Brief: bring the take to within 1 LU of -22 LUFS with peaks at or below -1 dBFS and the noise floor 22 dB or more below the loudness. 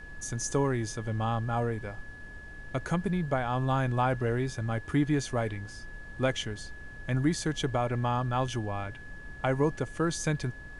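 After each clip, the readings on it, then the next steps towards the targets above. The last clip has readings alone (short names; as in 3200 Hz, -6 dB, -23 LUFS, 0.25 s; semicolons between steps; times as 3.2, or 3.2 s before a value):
steady tone 1700 Hz; tone level -46 dBFS; noise floor -45 dBFS; noise floor target -53 dBFS; loudness -30.5 LUFS; peak -13.0 dBFS; loudness target -22.0 LUFS
-> notch 1700 Hz, Q 30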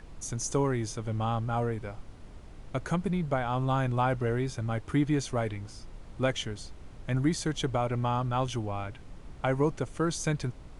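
steady tone none; noise floor -47 dBFS; noise floor target -53 dBFS
-> noise print and reduce 6 dB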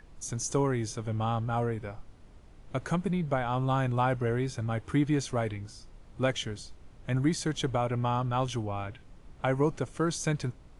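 noise floor -53 dBFS; loudness -30.5 LUFS; peak -13.0 dBFS; loudness target -22.0 LUFS
-> gain +8.5 dB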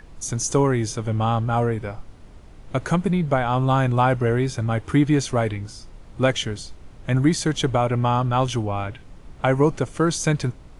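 loudness -22.0 LUFS; peak -4.5 dBFS; noise floor -44 dBFS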